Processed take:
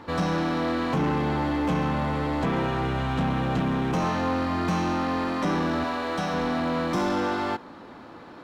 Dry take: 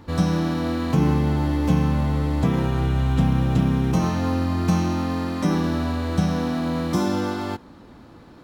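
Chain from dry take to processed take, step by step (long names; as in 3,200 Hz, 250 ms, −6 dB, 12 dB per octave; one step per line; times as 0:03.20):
0:05.84–0:06.34: high-pass filter 350 Hz 6 dB per octave
mid-hump overdrive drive 23 dB, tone 1,900 Hz, clips at −8 dBFS
level −8 dB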